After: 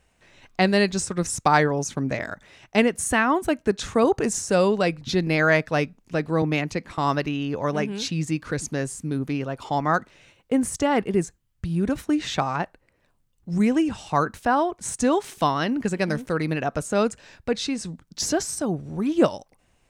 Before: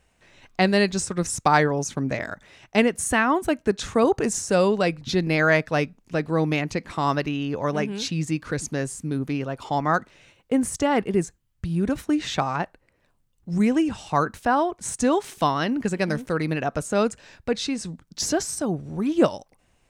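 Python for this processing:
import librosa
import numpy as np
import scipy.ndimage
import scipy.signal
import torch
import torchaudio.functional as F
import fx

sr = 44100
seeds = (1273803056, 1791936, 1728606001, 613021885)

y = fx.band_widen(x, sr, depth_pct=40, at=(6.42, 6.98))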